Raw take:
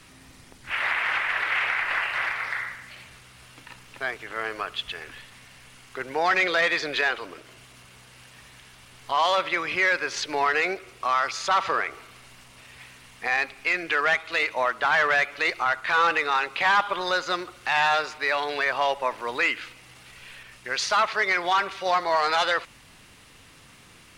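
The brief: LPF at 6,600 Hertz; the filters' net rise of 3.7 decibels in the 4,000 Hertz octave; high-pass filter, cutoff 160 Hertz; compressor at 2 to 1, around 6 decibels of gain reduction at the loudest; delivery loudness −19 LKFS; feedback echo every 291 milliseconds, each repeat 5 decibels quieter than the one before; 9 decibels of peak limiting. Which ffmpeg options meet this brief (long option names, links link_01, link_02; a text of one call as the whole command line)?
ffmpeg -i in.wav -af "highpass=160,lowpass=6600,equalizer=frequency=4000:width_type=o:gain=5,acompressor=threshold=-28dB:ratio=2,alimiter=limit=-23dB:level=0:latency=1,aecho=1:1:291|582|873|1164|1455|1746|2037:0.562|0.315|0.176|0.0988|0.0553|0.031|0.0173,volume=12dB" out.wav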